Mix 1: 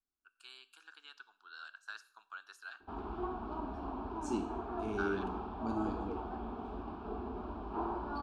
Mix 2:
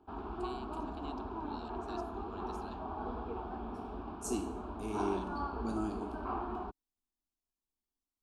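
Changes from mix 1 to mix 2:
first voice: remove resonant high-pass 1.5 kHz, resonance Q 7; second voice: remove distance through air 110 m; background: entry -2.80 s

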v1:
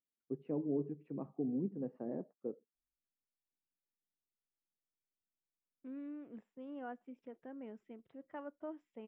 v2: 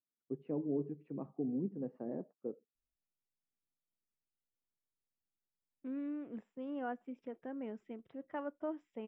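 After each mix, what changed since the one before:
second voice +5.5 dB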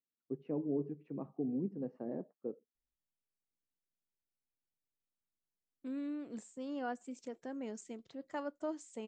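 second voice: remove Savitzky-Golay filter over 25 samples; master: remove distance through air 210 m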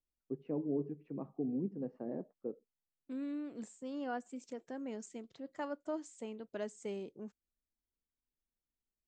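second voice: entry -2.75 s

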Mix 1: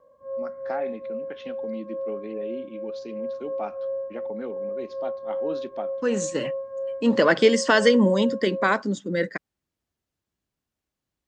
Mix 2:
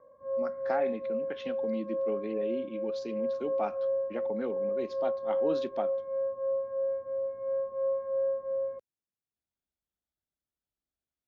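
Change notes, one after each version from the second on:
second voice: muted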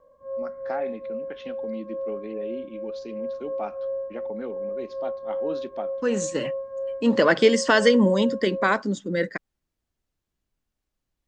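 second voice: unmuted; master: remove high-pass 73 Hz

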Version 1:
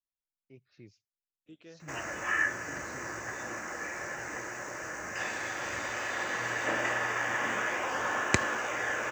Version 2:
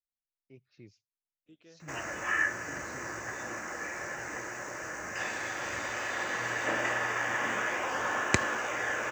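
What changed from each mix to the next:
second voice -5.5 dB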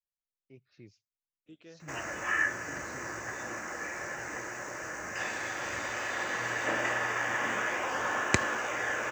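second voice +5.0 dB

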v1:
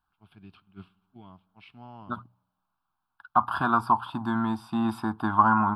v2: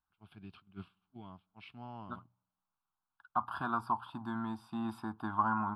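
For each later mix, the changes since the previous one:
first voice: send -11.5 dB; second voice -11.0 dB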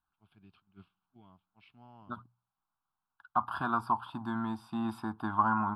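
first voice -8.5 dB; second voice +3.5 dB

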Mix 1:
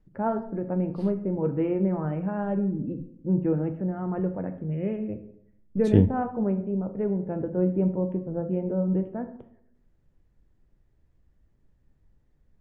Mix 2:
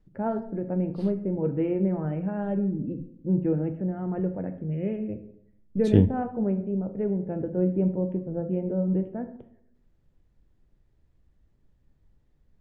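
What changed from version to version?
first voice: add peaking EQ 1.1 kHz -7.5 dB 0.77 oct; second voice: add peaking EQ 3.8 kHz +3.5 dB 0.9 oct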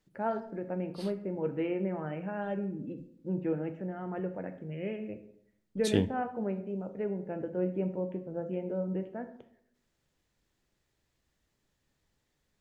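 master: add tilt EQ +4 dB/octave

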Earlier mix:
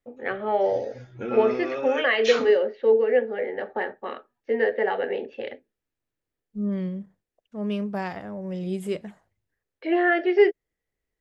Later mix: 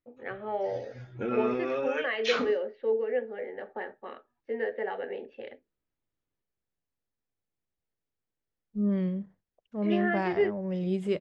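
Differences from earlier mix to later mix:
first voice -8.5 dB; second voice: entry +2.20 s; master: add distance through air 99 m

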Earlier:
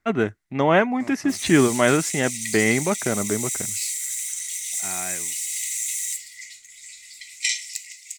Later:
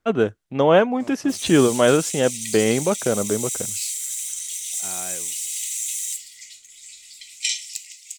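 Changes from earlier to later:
second voice -3.0 dB; master: add graphic EQ with 31 bands 500 Hz +10 dB, 2 kHz -11 dB, 3.15 kHz +5 dB

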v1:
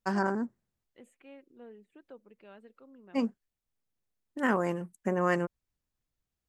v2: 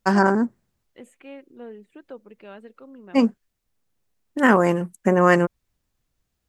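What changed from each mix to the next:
first voice +11.5 dB; second voice +10.5 dB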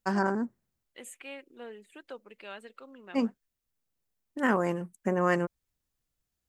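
first voice -10.0 dB; second voice: add tilt EQ +4 dB/octave

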